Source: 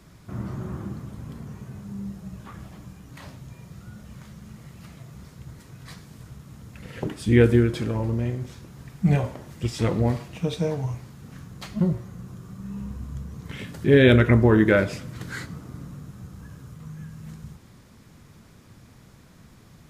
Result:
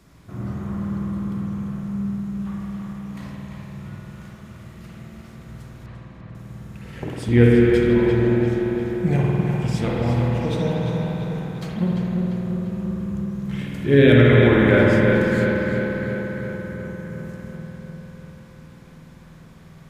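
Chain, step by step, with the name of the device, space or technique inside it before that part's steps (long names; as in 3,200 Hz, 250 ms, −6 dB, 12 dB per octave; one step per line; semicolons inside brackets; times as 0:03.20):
0:05.86–0:06.35: low-pass filter 1,400 Hz 12 dB per octave
dub delay into a spring reverb (feedback echo with a low-pass in the loop 345 ms, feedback 66%, low-pass 4,500 Hz, level −5 dB; spring reverb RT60 3.1 s, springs 50 ms, chirp 35 ms, DRR −3.5 dB)
level −2 dB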